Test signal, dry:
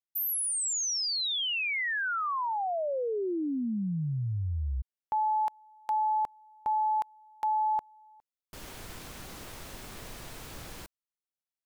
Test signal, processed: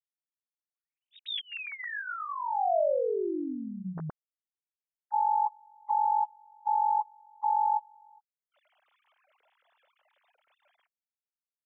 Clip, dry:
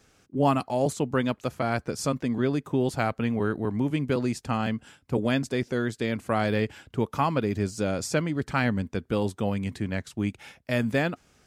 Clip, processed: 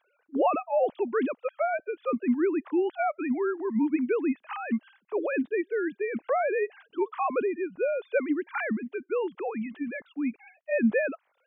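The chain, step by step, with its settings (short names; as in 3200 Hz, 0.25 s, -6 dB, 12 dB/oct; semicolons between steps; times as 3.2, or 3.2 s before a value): sine-wave speech; dynamic EQ 630 Hz, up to +5 dB, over -36 dBFS, Q 2.2; gain -2.5 dB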